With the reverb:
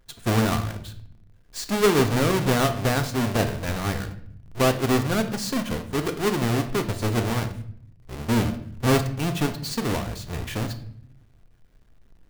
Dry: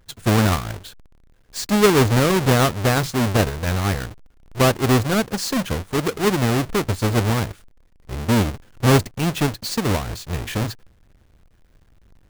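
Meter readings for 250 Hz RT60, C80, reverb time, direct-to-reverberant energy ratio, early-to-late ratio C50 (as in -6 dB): 1.1 s, 15.5 dB, 0.60 s, 7.0 dB, 12.0 dB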